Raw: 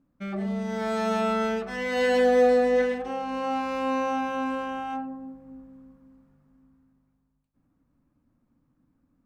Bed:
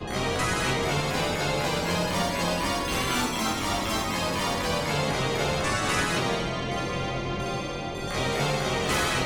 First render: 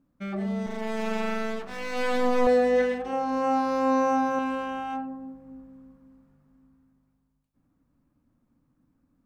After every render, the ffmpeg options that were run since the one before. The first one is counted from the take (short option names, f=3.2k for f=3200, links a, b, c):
-filter_complex "[0:a]asettb=1/sr,asplit=3[a][b][c];[a]atrim=end=0.664[d];[b]atrim=start=0.66:end=2.47,asetpts=PTS-STARTPTS,afade=t=in:d=0.004:c=qsin,afade=t=out:st=1.806:d=0.004:c=qsin,aeval=exprs='max(val(0),0)':c=same[e];[c]atrim=start=2.466[f];[d][e]acrossfade=d=0.004:c1=hsin:c2=qsin[g];[g][f]acrossfade=d=0.004:c1=qsin:c2=hsin,asettb=1/sr,asplit=3[h][i][j];[h]atrim=end=3.124[k];[i]atrim=start=3.12:end=4.39,asetpts=PTS-STARTPTS,afade=t=in:d=0.004:c=qsin,afade=t=out:st=1.266:d=0.004:c=qsin,aecho=1:1:7.4:0.65,atrim=end_sample=56007[l];[j]atrim=start=4.386[m];[k][l]acrossfade=d=0.004:c1=hsin:c2=qsin[n];[n][m]acrossfade=d=0.004:c1=qsin:c2=hsin"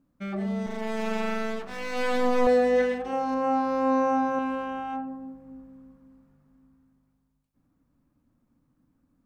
-filter_complex "[0:a]asettb=1/sr,asplit=3[a][b][c];[a]atrim=end=3.344[d];[b]atrim=start=3.34:end=5.07,asetpts=PTS-STARTPTS,afade=t=in:d=0.004:c=qsin,afade=t=out:st=1.726:d=0.004:c=qsin,highshelf=f=3.1k:g=-8.5[e];[c]atrim=start=5.066[f];[d][e]acrossfade=d=0.004:c1=hsin:c2=qsin[g];[g][f]acrossfade=d=0.004:c1=qsin:c2=hsin"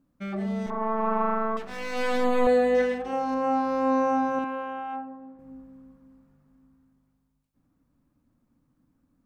-filter_complex "[0:a]asettb=1/sr,asplit=3[a][b][c];[a]atrim=end=0.704[d];[b]atrim=start=0.7:end=1.57,asetpts=PTS-STARTPTS,afade=t=in:d=0.004:c=qsin,afade=t=out:st=0.866:d=0.004:c=qsin,lowpass=f=1.1k:t=q:w=6.2[e];[c]atrim=start=1.566[f];[d][e]acrossfade=d=0.004:c1=hsin:c2=qsin[g];[g][f]acrossfade=d=0.004:c1=qsin:c2=hsin,asettb=1/sr,asplit=3[h][i][j];[h]atrim=end=2.244[k];[i]atrim=start=2.24:end=2.75,asetpts=PTS-STARTPTS,afade=t=in:d=0.004:c=qsin,afade=t=out:st=0.506:d=0.004:c=qsin,asuperstop=centerf=5400:order=12:qfactor=2.9[l];[j]atrim=start=2.746[m];[k][l]acrossfade=d=0.004:c1=hsin:c2=qsin[n];[n][m]acrossfade=d=0.004:c1=qsin:c2=hsin,asettb=1/sr,asplit=3[o][p][q];[o]atrim=end=4.444[r];[p]atrim=start=4.44:end=5.39,asetpts=PTS-STARTPTS,afade=t=in:d=0.004:c=qsin,afade=t=out:st=0.946:d=0.004:c=qsin,bass=f=250:g=-12,treble=f=4k:g=-13[s];[q]atrim=start=5.386[t];[r][s]acrossfade=d=0.004:c1=hsin:c2=qsin[u];[u][t]acrossfade=d=0.004:c1=qsin:c2=hsin"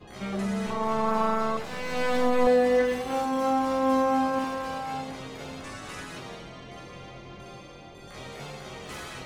-filter_complex "[1:a]volume=-14dB[a];[0:a][a]amix=inputs=2:normalize=0"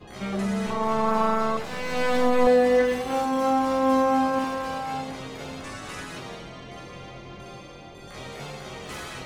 -af "volume=2.5dB"